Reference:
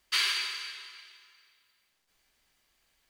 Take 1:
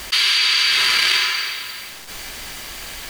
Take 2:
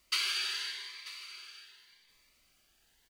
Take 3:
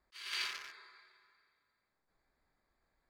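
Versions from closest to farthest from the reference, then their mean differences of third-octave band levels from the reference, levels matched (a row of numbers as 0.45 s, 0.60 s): 2, 3, 1; 5.0 dB, 6.5 dB, 12.0 dB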